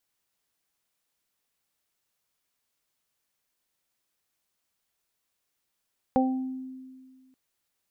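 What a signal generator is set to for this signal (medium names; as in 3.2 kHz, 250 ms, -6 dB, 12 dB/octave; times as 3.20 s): additive tone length 1.18 s, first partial 260 Hz, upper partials 0/-1 dB, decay 1.87 s, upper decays 0.30/0.51 s, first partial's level -20.5 dB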